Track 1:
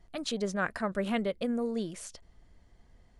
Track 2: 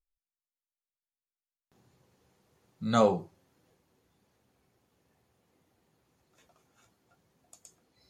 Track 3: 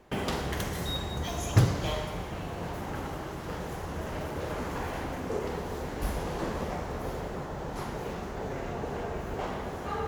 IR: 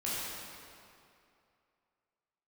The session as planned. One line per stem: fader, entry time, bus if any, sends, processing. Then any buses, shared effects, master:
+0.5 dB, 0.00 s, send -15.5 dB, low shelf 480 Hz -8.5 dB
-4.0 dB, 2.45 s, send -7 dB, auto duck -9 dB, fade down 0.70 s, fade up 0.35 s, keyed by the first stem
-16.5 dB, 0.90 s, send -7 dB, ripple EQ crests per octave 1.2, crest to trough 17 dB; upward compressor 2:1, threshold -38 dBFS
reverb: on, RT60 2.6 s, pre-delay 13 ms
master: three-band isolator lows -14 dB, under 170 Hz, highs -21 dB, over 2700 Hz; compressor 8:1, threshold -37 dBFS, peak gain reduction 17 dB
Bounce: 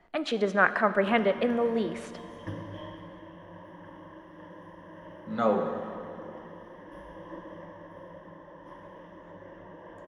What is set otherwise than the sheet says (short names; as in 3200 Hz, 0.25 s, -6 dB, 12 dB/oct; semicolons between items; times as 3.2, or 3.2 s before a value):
stem 1 +0.5 dB -> +10.5 dB; master: missing compressor 8:1, threshold -37 dBFS, peak gain reduction 17 dB